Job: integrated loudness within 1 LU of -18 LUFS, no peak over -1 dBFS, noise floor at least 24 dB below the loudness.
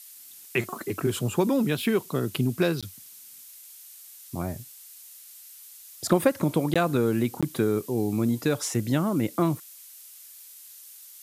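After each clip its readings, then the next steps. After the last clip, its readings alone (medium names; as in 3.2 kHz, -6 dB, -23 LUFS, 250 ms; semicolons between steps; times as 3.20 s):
dropouts 3; longest dropout 16 ms; noise floor -48 dBFS; noise floor target -51 dBFS; loudness -26.5 LUFS; peak level -8.0 dBFS; loudness target -18.0 LUFS
-> interpolate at 2.81/6.74/7.41 s, 16 ms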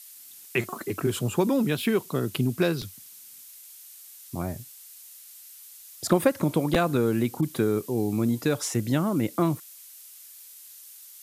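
dropouts 0; noise floor -48 dBFS; noise floor target -51 dBFS
-> noise reduction 6 dB, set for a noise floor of -48 dBFS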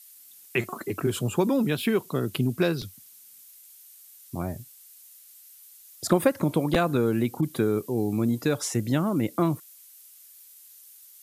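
noise floor -51 dBFS; loudness -26.5 LUFS; peak level -8.0 dBFS; loudness target -18.0 LUFS
-> trim +8.5 dB; peak limiter -1 dBFS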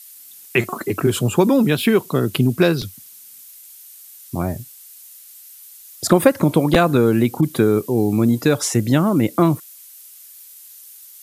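loudness -18.0 LUFS; peak level -1.0 dBFS; noise floor -43 dBFS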